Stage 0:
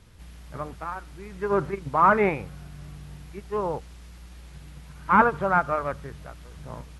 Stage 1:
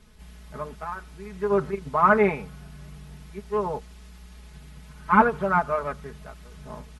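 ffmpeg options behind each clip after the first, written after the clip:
-af "aecho=1:1:4.7:0.84,volume=-2.5dB"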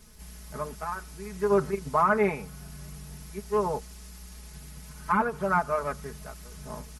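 -af "alimiter=limit=-13dB:level=0:latency=1:release=451,aexciter=amount=3:drive=5.2:freq=4.8k"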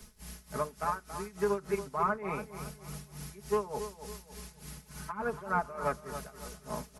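-filter_complex "[0:a]acrossover=split=95|190|1500[a][b][c][d];[a]acompressor=threshold=-51dB:ratio=4[e];[b]acompressor=threshold=-48dB:ratio=4[f];[c]acompressor=threshold=-30dB:ratio=4[g];[d]acompressor=threshold=-43dB:ratio=4[h];[e][f][g][h]amix=inputs=4:normalize=0,tremolo=f=3.4:d=0.86,asplit=2[i][j];[j]adelay=279,lowpass=f=4k:p=1,volume=-10.5dB,asplit=2[k][l];[l]adelay=279,lowpass=f=4k:p=1,volume=0.4,asplit=2[m][n];[n]adelay=279,lowpass=f=4k:p=1,volume=0.4,asplit=2[o][p];[p]adelay=279,lowpass=f=4k:p=1,volume=0.4[q];[k][m][o][q]amix=inputs=4:normalize=0[r];[i][r]amix=inputs=2:normalize=0,volume=3dB"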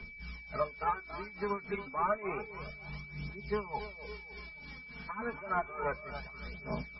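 -af "aphaser=in_gain=1:out_gain=1:delay=4.4:decay=0.6:speed=0.3:type=triangular,aeval=exprs='val(0)+0.00631*sin(2*PI*2300*n/s)':c=same,volume=-3dB" -ar 22050 -c:a libmp3lame -b:a 16k

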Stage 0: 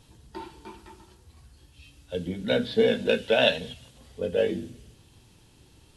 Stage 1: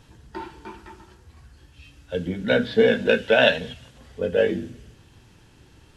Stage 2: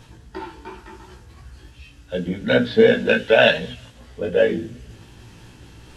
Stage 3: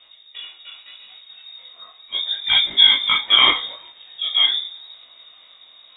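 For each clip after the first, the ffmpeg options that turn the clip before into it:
-af "equalizer=f=1.6k:t=o:w=0.67:g=6,equalizer=f=4k:t=o:w=0.67:g=-4,equalizer=f=10k:t=o:w=0.67:g=-9,volume=4dB"
-af "areverse,acompressor=mode=upward:threshold=-39dB:ratio=2.5,areverse,flanger=delay=16:depth=2.3:speed=2.7,volume=5.5dB"
-af "lowpass=f=3.2k:t=q:w=0.5098,lowpass=f=3.2k:t=q:w=0.6013,lowpass=f=3.2k:t=q:w=0.9,lowpass=f=3.2k:t=q:w=2.563,afreqshift=-3800,flanger=delay=19:depth=7:speed=0.77,dynaudnorm=f=230:g=11:m=11.5dB,volume=-1dB"

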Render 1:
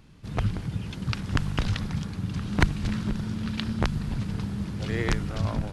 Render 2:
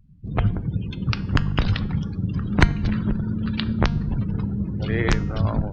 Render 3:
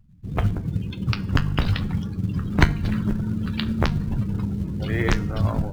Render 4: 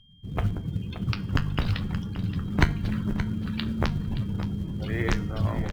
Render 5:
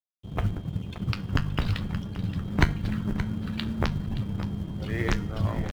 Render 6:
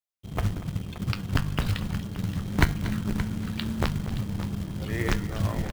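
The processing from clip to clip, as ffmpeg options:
-af "afftdn=nr=32:nf=-41,bandreject=f=233.4:t=h:w=4,bandreject=f=466.8:t=h:w=4,bandreject=f=700.2:t=h:w=4,bandreject=f=933.6:t=h:w=4,bandreject=f=1.167k:t=h:w=4,bandreject=f=1.4004k:t=h:w=4,bandreject=f=1.6338k:t=h:w=4,bandreject=f=1.8672k:t=h:w=4,bandreject=f=2.1006k:t=h:w=4,bandreject=f=2.334k:t=h:w=4,bandreject=f=2.5674k:t=h:w=4,bandreject=f=2.8008k:t=h:w=4,bandreject=f=3.0342k:t=h:w=4,bandreject=f=3.2676k:t=h:w=4,bandreject=f=3.501k:t=h:w=4,bandreject=f=3.7344k:t=h:w=4,bandreject=f=3.9678k:t=h:w=4,bandreject=f=4.2012k:t=h:w=4,bandreject=f=4.4346k:t=h:w=4,bandreject=f=4.668k:t=h:w=4,bandreject=f=4.9014k:t=h:w=4,bandreject=f=5.1348k:t=h:w=4,bandreject=f=5.3682k:t=h:w=4,bandreject=f=5.6016k:t=h:w=4,bandreject=f=5.835k:t=h:w=4,bandreject=f=6.0684k:t=h:w=4,bandreject=f=6.3018k:t=h:w=4,bandreject=f=6.5352k:t=h:w=4,bandreject=f=6.7686k:t=h:w=4,bandreject=f=7.002k:t=h:w=4,volume=5.5dB"
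-filter_complex "[0:a]asplit=2[a][b];[b]acrusher=bits=5:mode=log:mix=0:aa=0.000001,volume=-6dB[c];[a][c]amix=inputs=2:normalize=0,flanger=delay=8.9:depth=4.7:regen=-59:speed=0.94:shape=triangular"
-filter_complex "[0:a]aeval=exprs='val(0)+0.00224*sin(2*PI*3200*n/s)':c=same,asplit=2[a][b];[b]aecho=0:1:574:0.251[c];[a][c]amix=inputs=2:normalize=0,volume=-4.5dB"
-af "aeval=exprs='sgn(val(0))*max(abs(val(0))-0.00631,0)':c=same"
-af "aecho=1:1:237:0.178,acrusher=bits=4:mode=log:mix=0:aa=0.000001"

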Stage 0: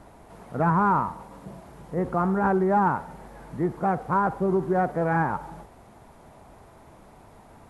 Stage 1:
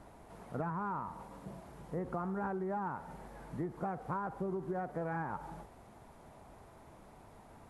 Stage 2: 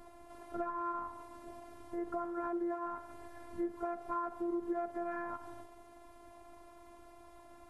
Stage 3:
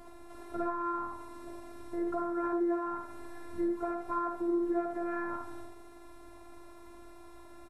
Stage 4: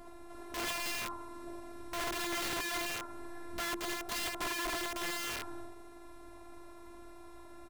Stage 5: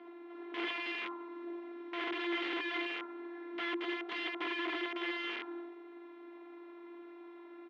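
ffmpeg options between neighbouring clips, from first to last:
-af "acompressor=threshold=-28dB:ratio=12,volume=-6dB"
-af "afftfilt=real='hypot(re,im)*cos(PI*b)':imag='0':win_size=512:overlap=0.75,volume=4dB"
-af "aecho=1:1:53|76:0.531|0.501,volume=3dB"
-af "aeval=exprs='(mod(37.6*val(0)+1,2)-1)/37.6':c=same"
-af "highpass=f=280:w=0.5412,highpass=f=280:w=1.3066,equalizer=f=330:t=q:w=4:g=9,equalizer=f=600:t=q:w=4:g=-7,equalizer=f=2.1k:t=q:w=4:g=6,equalizer=f=3.2k:t=q:w=4:g=7,lowpass=f=3.2k:w=0.5412,lowpass=f=3.2k:w=1.3066,volume=-2.5dB"

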